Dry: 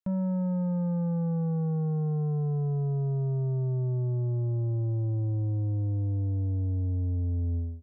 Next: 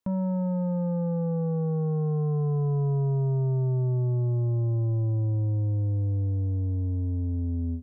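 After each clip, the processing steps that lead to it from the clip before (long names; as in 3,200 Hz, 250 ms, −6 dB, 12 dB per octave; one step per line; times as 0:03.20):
thirty-one-band graphic EQ 100 Hz +6 dB, 250 Hz +10 dB, 500 Hz +7 dB, 1,000 Hz +9 dB
brickwall limiter −29 dBFS, peak gain reduction 10 dB
level +6 dB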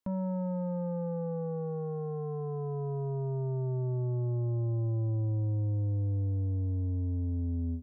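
parametric band 150 Hz −9 dB 0.41 octaves
level −3 dB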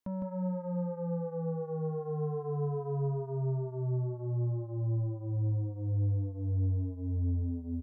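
brickwall limiter −30 dBFS, peak gain reduction 4 dB
single-tap delay 158 ms −3.5 dB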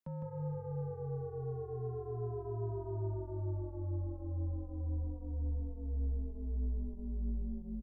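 echo with shifted repeats 159 ms, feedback 35%, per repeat −51 Hz, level −12 dB
frequency shifter −34 Hz
level −5.5 dB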